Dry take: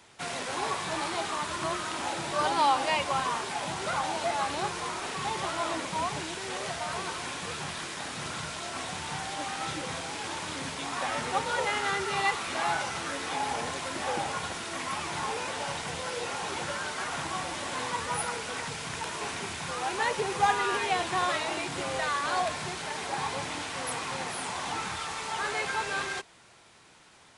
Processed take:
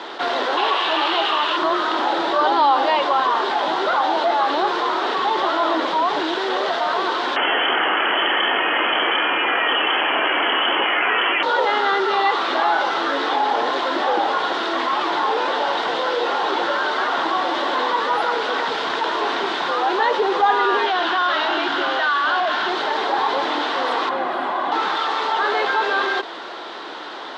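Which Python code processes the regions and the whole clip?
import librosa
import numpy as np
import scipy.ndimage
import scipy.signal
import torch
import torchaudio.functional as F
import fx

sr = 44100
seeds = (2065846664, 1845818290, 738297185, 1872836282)

y = fx.chain(x, sr, fx.highpass(hz=380.0, slope=6),
    fx.peak_eq(hz=2800.0, db=13.5, octaves=0.45), at=(0.57, 1.57))
y = fx.chain(y, sr, fx.freq_invert(carrier_hz=3200),
    fx.env_flatten(amount_pct=70), at=(7.36, 11.43))
y = fx.chain(y, sr, fx.clip_hard(threshold_db=-30.5),
    fx.cabinet(low_hz=140.0, low_slope=12, high_hz=7800.0, hz=(490.0, 1500.0, 3000.0), db=(-9, 8, 6)), at=(20.86, 22.7))
y = fx.chain(y, sr, fx.peak_eq(hz=5800.0, db=-15.0, octaves=1.8),
    fx.notch_comb(f0_hz=450.0), at=(24.09, 24.72))
y = scipy.signal.sosfilt(scipy.signal.cheby1(3, 1.0, [310.0, 3700.0], 'bandpass', fs=sr, output='sos'), y)
y = fx.peak_eq(y, sr, hz=2400.0, db=-11.0, octaves=0.57)
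y = fx.env_flatten(y, sr, amount_pct=50)
y = y * librosa.db_to_amplitude(7.5)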